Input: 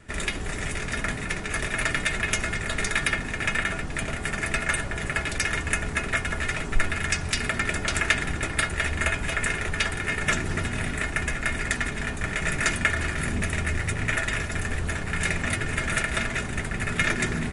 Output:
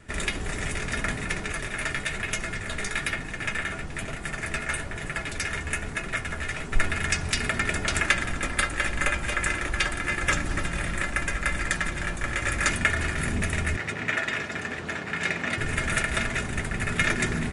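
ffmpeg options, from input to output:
ffmpeg -i in.wav -filter_complex "[0:a]asettb=1/sr,asplit=3[link_01][link_02][link_03];[link_01]atrim=end=1.524[link_04];[link_02]atrim=start=1.52:end=6.73,asetpts=PTS-STARTPTS,afade=type=in:duration=0.004:curve=qsin,afade=type=out:start_time=5.206:duration=0.004:curve=qsin,flanger=delay=5.7:depth=9.2:regen=-36:speed=1.1:shape=sinusoidal[link_05];[link_03]atrim=start=6.726[link_06];[link_04][link_05]acrossfade=duration=0.004:curve1=hsin:curve2=qsin[link_07];[link_07][link_06]acrossfade=duration=0.004:curve1=qsin:curve2=hsin,asettb=1/sr,asplit=3[link_08][link_09][link_10];[link_08]atrim=end=8.064[link_11];[link_09]atrim=start=8.06:end=12.69,asetpts=PTS-STARTPTS,afade=type=in:duration=0.004:curve=qsin,afade=type=out:start_time=4.626:duration=0.004:curve=qsin,afreqshift=-69[link_12];[link_10]atrim=start=12.686[link_13];[link_11][link_12]acrossfade=duration=0.004:curve1=hsin:curve2=qsin[link_14];[link_14][link_13]acrossfade=duration=0.004:curve1=qsin:curve2=hsin,asettb=1/sr,asplit=3[link_15][link_16][link_17];[link_15]atrim=end=13.764[link_18];[link_16]atrim=start=13.76:end=15.58,asetpts=PTS-STARTPTS,afade=type=in:duration=0.004:curve=qsin,afade=type=out:start_time=1.816:duration=0.004:curve=qsin,highpass=190,lowpass=5400[link_19];[link_17]atrim=start=15.576[link_20];[link_18][link_19]acrossfade=duration=0.004:curve1=hsin:curve2=qsin[link_21];[link_21][link_20]acrossfade=duration=0.004:curve1=qsin:curve2=hsin" out.wav

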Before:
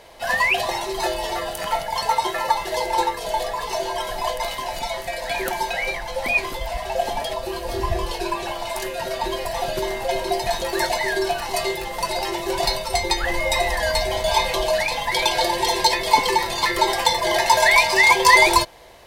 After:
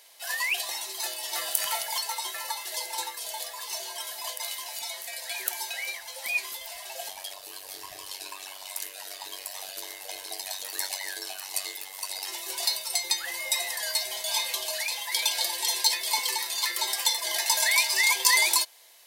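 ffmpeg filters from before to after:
ffmpeg -i in.wav -filter_complex "[0:a]asettb=1/sr,asplit=3[link_01][link_02][link_03];[link_01]atrim=end=1.334[link_04];[link_02]atrim=start=1.33:end=1.98,asetpts=PTS-STARTPTS,afade=type=in:duration=0.004:curve=qsin,afade=type=out:start_time=0.646:duration=0.004:curve=qsin,acontrast=49[link_05];[link_03]atrim=start=1.976[link_06];[link_04][link_05]acrossfade=duration=0.004:curve1=hsin:curve2=qsin[link_07];[link_07][link_06]acrossfade=duration=0.004:curve1=qsin:curve2=hsin,asettb=1/sr,asplit=3[link_08][link_09][link_10];[link_08]atrim=end=7.084[link_11];[link_09]atrim=start=7.08:end=12.28,asetpts=PTS-STARTPTS,afade=type=in:duration=0.004:curve=qsin,afade=type=out:start_time=5.196:duration=0.004:curve=qsin,aeval=exprs='val(0)*sin(2*PI*48*n/s)':channel_layout=same[link_12];[link_10]atrim=start=12.276[link_13];[link_11][link_12]acrossfade=duration=0.004:curve1=hsin:curve2=qsin[link_14];[link_14][link_13]acrossfade=duration=0.004:curve1=qsin:curve2=hsin,aderivative,volume=1.5dB" out.wav

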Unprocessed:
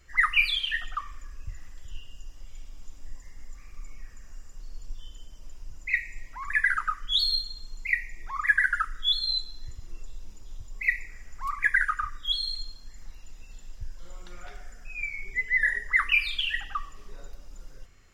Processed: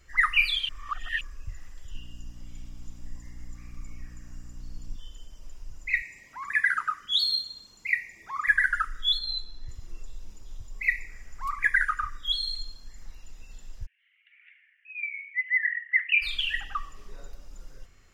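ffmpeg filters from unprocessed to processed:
ffmpeg -i in.wav -filter_complex "[0:a]asettb=1/sr,asplit=3[link_01][link_02][link_03];[link_01]atrim=end=1.944[link_04];[link_02]atrim=start=1.94:end=4.96,asetpts=PTS-STARTPTS,afade=type=in:duration=0.004:curve=qsin,afade=type=out:start_time=3.016:duration=0.004:curve=qsin,aeval=exprs='val(0)+0.00501*(sin(2*PI*60*n/s)+sin(2*PI*2*60*n/s)/2+sin(2*PI*3*60*n/s)/3+sin(2*PI*4*60*n/s)/4+sin(2*PI*5*60*n/s)/5)':channel_layout=same[link_05];[link_03]atrim=start=4.956[link_06];[link_04][link_05]acrossfade=duration=0.004:curve1=hsin:curve2=qsin[link_07];[link_07][link_06]acrossfade=duration=0.004:curve1=qsin:curve2=hsin,asettb=1/sr,asplit=3[link_08][link_09][link_10];[link_08]atrim=end=6.024[link_11];[link_09]atrim=start=6.02:end=8.48,asetpts=PTS-STARTPTS,afade=type=in:duration=0.004:curve=qsin,afade=type=out:start_time=2.456:duration=0.004:curve=qsin,highpass=130[link_12];[link_10]atrim=start=8.476[link_13];[link_11][link_12]acrossfade=duration=0.004:curve1=hsin:curve2=qsin[link_14];[link_14][link_13]acrossfade=duration=0.004:curve1=qsin:curve2=hsin,asettb=1/sr,asplit=3[link_15][link_16][link_17];[link_15]atrim=end=9.184[link_18];[link_16]atrim=start=9.18:end=9.69,asetpts=PTS-STARTPTS,afade=type=in:duration=0.004:curve=qsin,afade=type=out:start_time=0.506:duration=0.004:curve=qsin,lowpass=frequency=3000:poles=1[link_19];[link_17]atrim=start=9.686[link_20];[link_18][link_19]acrossfade=duration=0.004:curve1=hsin:curve2=qsin[link_21];[link_21][link_20]acrossfade=duration=0.004:curve1=qsin:curve2=hsin,asplit=3[link_22][link_23][link_24];[link_22]afade=type=out:start_time=13.85:duration=0.02[link_25];[link_23]asuperpass=centerf=2300:order=8:qfactor=2.1,afade=type=in:start_time=13.85:duration=0.02,afade=type=out:start_time=16.21:duration=0.02[link_26];[link_24]afade=type=in:start_time=16.21:duration=0.02[link_27];[link_25][link_26][link_27]amix=inputs=3:normalize=0,asplit=3[link_28][link_29][link_30];[link_28]atrim=end=0.692[link_31];[link_29]atrim=start=0.688:end=1.212,asetpts=PTS-STARTPTS,areverse[link_32];[link_30]atrim=start=1.208[link_33];[link_31][link_32]acrossfade=duration=0.004:curve1=hsin:curve2=hsin[link_34];[link_34][link_33]acrossfade=duration=0.004:curve1=hsin:curve2=hsin" out.wav

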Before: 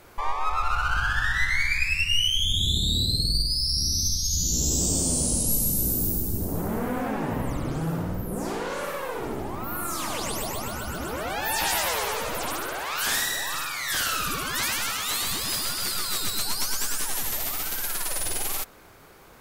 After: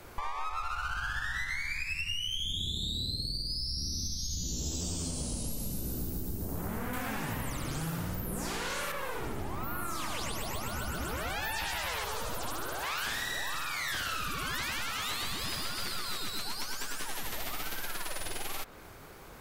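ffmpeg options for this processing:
ffmpeg -i in.wav -filter_complex "[0:a]asettb=1/sr,asplit=3[link_01][link_02][link_03];[link_01]atrim=end=4.654[link_04];[link_02]atrim=start=4.65:end=5.11,asetpts=PTS-STARTPTS,afade=type=in:duration=0.004:curve=qsin,afade=type=out:start_time=0.456:duration=0.004:curve=qsin,asplit=2[link_05][link_06];[link_06]adelay=12,volume=-2dB[link_07];[link_05][link_07]amix=inputs=2:normalize=0,atrim=end_sample=20286[link_08];[link_03]atrim=start=5.106[link_09];[link_04][link_08]acrossfade=duration=0.004:curve1=hsin:curve2=qsin[link_10];[link_10][link_09]acrossfade=duration=0.004:curve1=qsin:curve2=hsin,asettb=1/sr,asplit=3[link_11][link_12][link_13];[link_11]atrim=end=6.934[link_14];[link_12]atrim=start=6.93:end=8.92,asetpts=PTS-STARTPTS,afade=type=in:duration=0.004:curve=qsin,afade=type=out:start_time=1.986:duration=0.004:curve=qsin,highshelf=frequency=2700:gain=10.5[link_15];[link_13]atrim=start=8.916[link_16];[link_14][link_15]acrossfade=duration=0.004:curve1=hsin:curve2=qsin[link_17];[link_17][link_16]acrossfade=duration=0.004:curve1=qsin:curve2=hsin,asettb=1/sr,asplit=3[link_18][link_19][link_20];[link_18]atrim=end=12.044[link_21];[link_19]atrim=start=12.04:end=12.83,asetpts=PTS-STARTPTS,afade=type=in:duration=0.004:curve=qsin,afade=type=out:start_time=0.786:duration=0.004:curve=qsin,equalizer=frequency=2200:width=1.5:gain=-9.5[link_22];[link_20]atrim=start=12.826[link_23];[link_21][link_22]acrossfade=duration=0.004:curve1=hsin:curve2=qsin[link_24];[link_24][link_23]acrossfade=duration=0.004:curve1=qsin:curve2=hsin,acrossover=split=160|1100|4400[link_25][link_26][link_27][link_28];[link_25]acompressor=threshold=-36dB:ratio=4[link_29];[link_26]acompressor=threshold=-39dB:ratio=4[link_30];[link_27]acompressor=threshold=-28dB:ratio=4[link_31];[link_28]acompressor=threshold=-40dB:ratio=4[link_32];[link_29][link_30][link_31][link_32]amix=inputs=4:normalize=0,lowshelf=frequency=150:gain=4.5,acompressor=threshold=-31dB:ratio=6" out.wav

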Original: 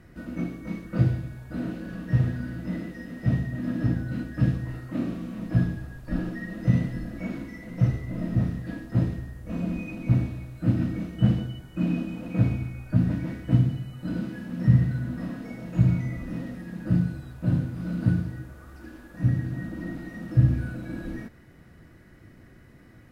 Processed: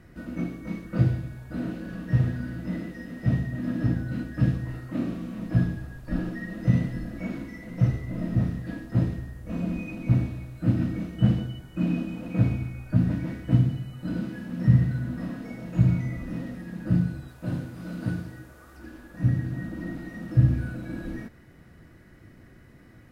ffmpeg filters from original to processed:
ffmpeg -i in.wav -filter_complex "[0:a]asettb=1/sr,asplit=3[link_01][link_02][link_03];[link_01]atrim=end=17.284[link_04];[link_02]atrim=start=17.28:end=18.77,asetpts=PTS-STARTPTS,afade=type=in:duration=0.004:curve=qsin,afade=type=out:start_time=1.486:duration=0.004:curve=qsin,bass=frequency=250:gain=-8,treble=frequency=4000:gain=3[link_05];[link_03]atrim=start=18.766[link_06];[link_04][link_05]acrossfade=duration=0.004:curve1=hsin:curve2=qsin[link_07];[link_07][link_06]acrossfade=duration=0.004:curve1=qsin:curve2=hsin" out.wav

